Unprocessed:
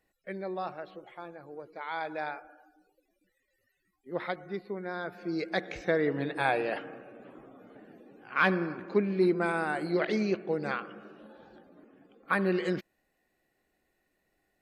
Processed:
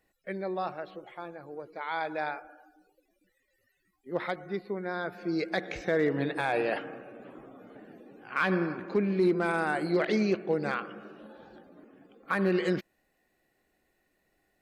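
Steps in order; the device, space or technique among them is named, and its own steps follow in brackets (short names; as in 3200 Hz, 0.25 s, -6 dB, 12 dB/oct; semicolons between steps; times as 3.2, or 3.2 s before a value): limiter into clipper (limiter -19.5 dBFS, peak gain reduction 6.5 dB; hard clip -20.5 dBFS, distortion -34 dB); gain +2.5 dB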